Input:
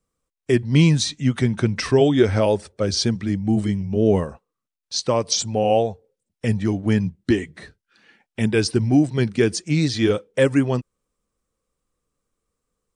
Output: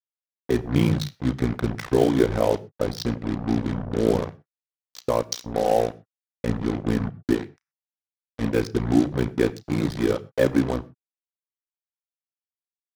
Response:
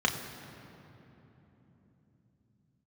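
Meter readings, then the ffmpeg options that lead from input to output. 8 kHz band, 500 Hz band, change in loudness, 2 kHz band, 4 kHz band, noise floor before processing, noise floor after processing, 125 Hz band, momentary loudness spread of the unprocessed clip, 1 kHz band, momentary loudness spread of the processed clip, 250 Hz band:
−10.5 dB, −3.0 dB, −4.0 dB, −5.5 dB, −10.0 dB, −84 dBFS, below −85 dBFS, −6.0 dB, 8 LU, −1.5 dB, 7 LU, −3.5 dB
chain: -filter_complex "[0:a]tremolo=f=59:d=0.947,adynamicsmooth=sensitivity=1:basefreq=1800,acrusher=bits=4:mix=0:aa=0.5,asplit=2[link_01][link_02];[1:a]atrim=start_sample=2205,afade=type=out:start_time=0.18:duration=0.01,atrim=end_sample=8379[link_03];[link_02][link_03]afir=irnorm=-1:irlink=0,volume=-19.5dB[link_04];[link_01][link_04]amix=inputs=2:normalize=0"

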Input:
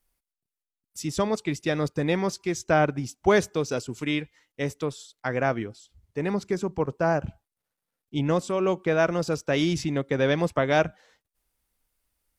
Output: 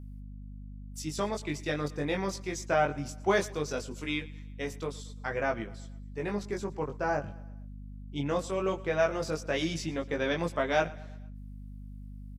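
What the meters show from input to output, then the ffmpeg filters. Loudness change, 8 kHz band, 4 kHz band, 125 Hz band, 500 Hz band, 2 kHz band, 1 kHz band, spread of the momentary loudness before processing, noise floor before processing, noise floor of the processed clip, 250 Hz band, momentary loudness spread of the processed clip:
−6.0 dB, −4.0 dB, −4.0 dB, −7.5 dB, −6.0 dB, −4.0 dB, −4.5 dB, 10 LU, below −85 dBFS, −44 dBFS, −7.5 dB, 18 LU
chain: -af "lowshelf=frequency=290:gain=-7.5,flanger=delay=18:depth=3.2:speed=0.19,aeval=exprs='val(0)+0.00891*(sin(2*PI*50*n/s)+sin(2*PI*2*50*n/s)/2+sin(2*PI*3*50*n/s)/3+sin(2*PI*4*50*n/s)/4+sin(2*PI*5*50*n/s)/5)':channel_layout=same,aecho=1:1:115|230|345|460:0.0891|0.0455|0.0232|0.0118,volume=-1dB"

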